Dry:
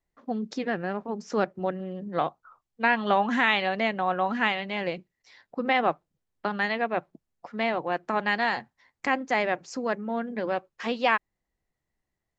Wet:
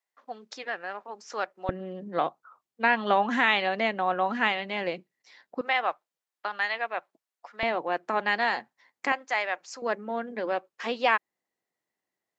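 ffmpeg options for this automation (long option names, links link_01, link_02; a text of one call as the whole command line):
ffmpeg -i in.wav -af "asetnsamples=nb_out_samples=441:pad=0,asendcmd='1.69 highpass f 220;5.61 highpass f 790;7.63 highpass f 280;9.12 highpass f 800;9.82 highpass f 300',highpass=780" out.wav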